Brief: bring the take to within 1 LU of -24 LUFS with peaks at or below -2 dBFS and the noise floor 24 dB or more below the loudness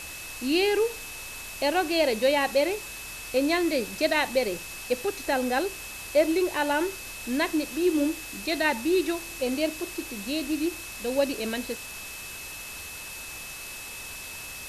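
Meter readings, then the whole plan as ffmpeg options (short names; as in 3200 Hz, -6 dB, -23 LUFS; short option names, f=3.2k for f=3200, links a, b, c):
steady tone 2600 Hz; tone level -41 dBFS; noise floor -39 dBFS; noise floor target -52 dBFS; loudness -27.5 LUFS; peak -10.5 dBFS; loudness target -24.0 LUFS
-> -af "bandreject=f=2.6k:w=30"
-af "afftdn=nr=13:nf=-39"
-af "volume=3.5dB"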